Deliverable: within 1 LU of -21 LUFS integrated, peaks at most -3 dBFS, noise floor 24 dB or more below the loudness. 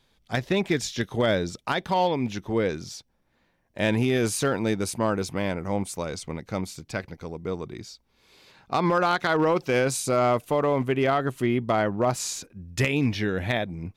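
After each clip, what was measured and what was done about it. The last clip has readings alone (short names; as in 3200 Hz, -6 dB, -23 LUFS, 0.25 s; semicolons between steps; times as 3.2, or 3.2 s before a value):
clipped 0.3%; flat tops at -14.5 dBFS; loudness -26.0 LUFS; peak -14.5 dBFS; loudness target -21.0 LUFS
-> clip repair -14.5 dBFS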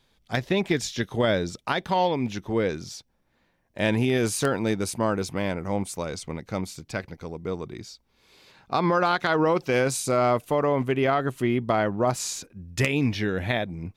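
clipped 0.0%; loudness -25.5 LUFS; peak -5.5 dBFS; loudness target -21.0 LUFS
-> gain +4.5 dB; limiter -3 dBFS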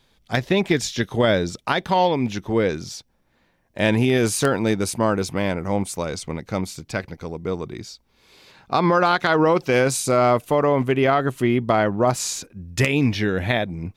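loudness -21.0 LUFS; peak -3.0 dBFS; noise floor -64 dBFS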